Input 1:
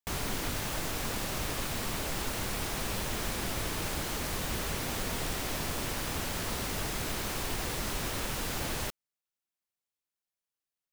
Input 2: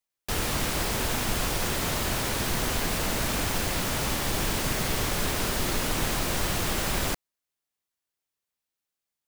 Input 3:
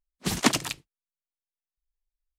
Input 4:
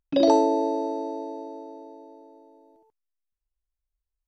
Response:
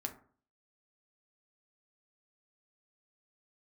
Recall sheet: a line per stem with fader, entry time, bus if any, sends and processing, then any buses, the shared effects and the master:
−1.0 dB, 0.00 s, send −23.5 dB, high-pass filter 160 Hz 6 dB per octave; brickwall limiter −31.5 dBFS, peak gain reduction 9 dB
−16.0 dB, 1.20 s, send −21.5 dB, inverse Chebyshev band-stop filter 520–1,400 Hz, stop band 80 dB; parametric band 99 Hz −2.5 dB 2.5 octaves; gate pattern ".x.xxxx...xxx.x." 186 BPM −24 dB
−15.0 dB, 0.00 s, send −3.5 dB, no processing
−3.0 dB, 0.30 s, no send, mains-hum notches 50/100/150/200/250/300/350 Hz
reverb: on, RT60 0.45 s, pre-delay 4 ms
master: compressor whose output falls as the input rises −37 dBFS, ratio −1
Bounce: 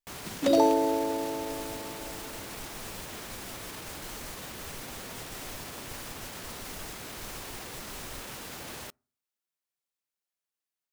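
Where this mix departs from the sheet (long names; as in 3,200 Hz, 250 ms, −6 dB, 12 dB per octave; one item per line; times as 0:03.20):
stem 3: send off
master: missing compressor whose output falls as the input rises −37 dBFS, ratio −1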